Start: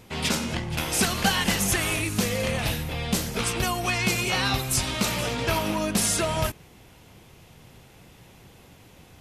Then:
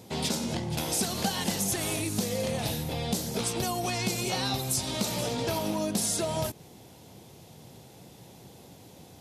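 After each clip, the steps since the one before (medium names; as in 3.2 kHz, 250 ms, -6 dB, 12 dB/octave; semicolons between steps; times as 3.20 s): high-pass 110 Hz 12 dB/octave; high-order bell 1.8 kHz -8.5 dB; compression 2.5:1, threshold -31 dBFS, peak gain reduction 8.5 dB; trim +2.5 dB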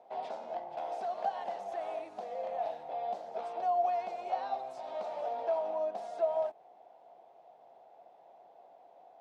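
ladder band-pass 740 Hz, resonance 75%; trim +4 dB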